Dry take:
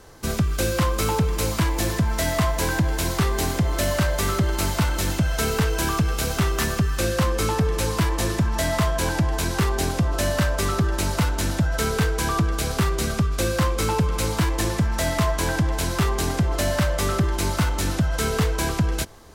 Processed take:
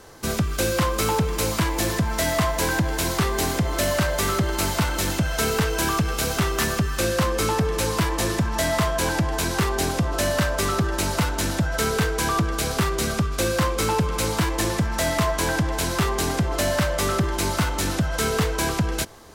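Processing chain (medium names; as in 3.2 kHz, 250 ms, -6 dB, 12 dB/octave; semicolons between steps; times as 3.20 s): bass shelf 110 Hz -7.5 dB; in parallel at -9 dB: hard clipper -25.5 dBFS, distortion -8 dB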